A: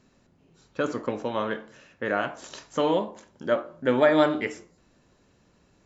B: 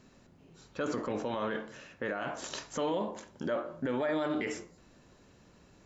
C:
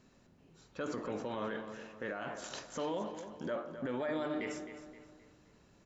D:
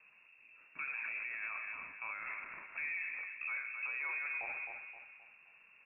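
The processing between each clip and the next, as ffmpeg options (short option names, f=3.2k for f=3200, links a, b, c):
-af "acompressor=threshold=-25dB:ratio=6,alimiter=level_in=2.5dB:limit=-24dB:level=0:latency=1:release=21,volume=-2.5dB,volume=2.5dB"
-filter_complex "[0:a]asplit=2[a][b];[b]adelay=262,lowpass=f=4.9k:p=1,volume=-10dB,asplit=2[c][d];[d]adelay=262,lowpass=f=4.9k:p=1,volume=0.42,asplit=2[e][f];[f]adelay=262,lowpass=f=4.9k:p=1,volume=0.42,asplit=2[g][h];[h]adelay=262,lowpass=f=4.9k:p=1,volume=0.42[i];[a][c][e][g][i]amix=inputs=5:normalize=0,volume=-5dB"
-af "alimiter=level_in=10.5dB:limit=-24dB:level=0:latency=1:release=59,volume=-10.5dB,aeval=exprs='0.0188*(cos(1*acos(clip(val(0)/0.0188,-1,1)))-cos(1*PI/2))+0.00075*(cos(3*acos(clip(val(0)/0.0188,-1,1)))-cos(3*PI/2))':c=same,lowpass=f=2.4k:t=q:w=0.5098,lowpass=f=2.4k:t=q:w=0.6013,lowpass=f=2.4k:t=q:w=0.9,lowpass=f=2.4k:t=q:w=2.563,afreqshift=-2800,volume=2.5dB"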